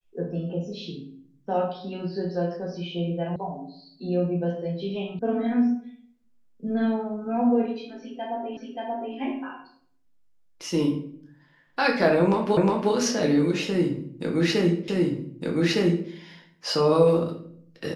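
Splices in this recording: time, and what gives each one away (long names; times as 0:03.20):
0:03.36: cut off before it has died away
0:05.19: cut off before it has died away
0:08.57: the same again, the last 0.58 s
0:12.57: the same again, the last 0.36 s
0:14.88: the same again, the last 1.21 s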